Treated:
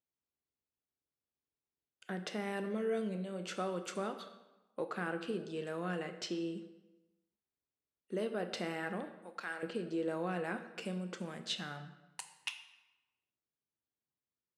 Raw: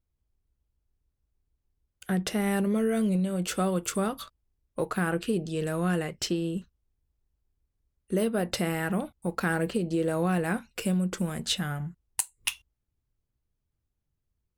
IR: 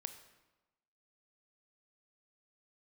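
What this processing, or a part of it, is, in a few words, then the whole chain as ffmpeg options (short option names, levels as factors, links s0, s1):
supermarket ceiling speaker: -filter_complex "[0:a]asettb=1/sr,asplit=3[s0][s1][s2];[s0]atrim=end=9.124[s3];[s1]atrim=start=9.12:end=9.63,asetpts=PTS-STARTPTS,afade=t=in:d=0.004:c=qsin,afade=t=out:st=0.506:d=0.004:c=qsin,highpass=f=1400:p=1[s4];[s2]atrim=start=9.626[s5];[s3][s4]acrossfade=d=0.004:c1=hsin:c2=qsin[s6];[s6][s5]acrossfade=d=0.004:c1=qsin:c2=hsin,highpass=250,lowpass=5300[s7];[1:a]atrim=start_sample=2205[s8];[s7][s8]afir=irnorm=-1:irlink=0,volume=0.596"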